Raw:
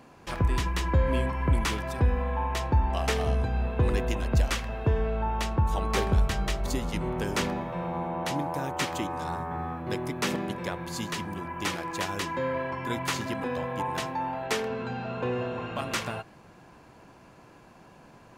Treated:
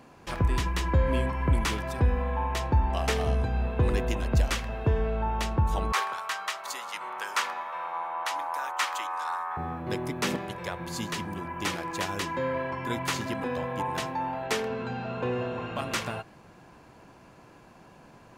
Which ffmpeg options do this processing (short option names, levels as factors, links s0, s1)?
-filter_complex "[0:a]asettb=1/sr,asplit=3[s0][s1][s2];[s0]atrim=end=5.924[s3];[s1]atrim=start=5.92:end=9.57,asetpts=PTS-STARTPTS,afade=t=in:d=0.004:c=qsin,afade=t=out:st=3.646:d=0.004:c=qsin,highpass=f=1100:t=q:w=2.1[s4];[s2]atrim=start=9.566[s5];[s3][s4]acrossfade=d=0.004:c1=hsin:c2=qsin[s6];[s6][s5]acrossfade=d=0.004:c1=qsin:c2=hsin,asettb=1/sr,asplit=3[s7][s8][s9];[s7]atrim=end=10.374[s10];[s8]atrim=start=10.37:end=10.8,asetpts=PTS-STARTPTS,afade=t=in:d=0.004:c=qsin,afade=t=out:st=0.426:d=0.004:c=qsin,equalizer=f=250:t=o:w=0.77:g=-13.5[s11];[s9]atrim=start=10.796[s12];[s10][s11]acrossfade=d=0.004:c1=hsin:c2=qsin[s13];[s13][s12]acrossfade=d=0.004:c1=qsin:c2=hsin"